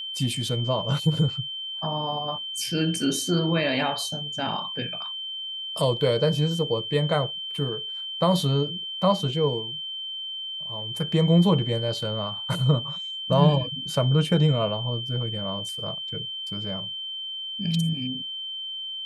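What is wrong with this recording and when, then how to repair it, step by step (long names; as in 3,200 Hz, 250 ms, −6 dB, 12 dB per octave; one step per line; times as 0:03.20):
whistle 3,100 Hz −31 dBFS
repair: notch filter 3,100 Hz, Q 30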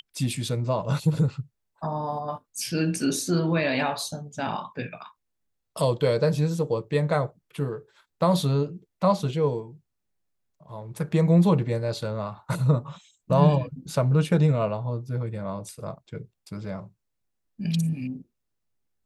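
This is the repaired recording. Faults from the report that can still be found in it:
none of them is left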